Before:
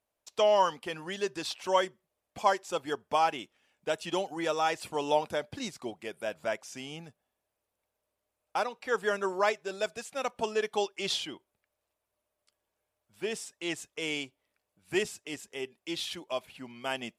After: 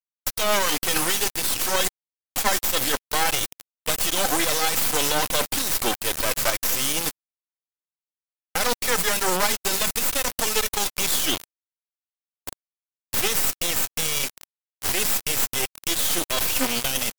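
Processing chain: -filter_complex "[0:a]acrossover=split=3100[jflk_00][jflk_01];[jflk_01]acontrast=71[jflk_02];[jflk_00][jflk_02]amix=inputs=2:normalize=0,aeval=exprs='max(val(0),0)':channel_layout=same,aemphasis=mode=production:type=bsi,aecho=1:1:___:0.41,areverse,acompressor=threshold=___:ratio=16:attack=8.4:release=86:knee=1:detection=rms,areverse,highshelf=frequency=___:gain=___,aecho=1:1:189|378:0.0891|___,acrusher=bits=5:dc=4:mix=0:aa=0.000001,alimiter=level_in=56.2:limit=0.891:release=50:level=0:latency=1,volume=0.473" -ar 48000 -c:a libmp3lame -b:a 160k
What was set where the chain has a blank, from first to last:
3.9, 0.00794, 11000, 5, 0.0223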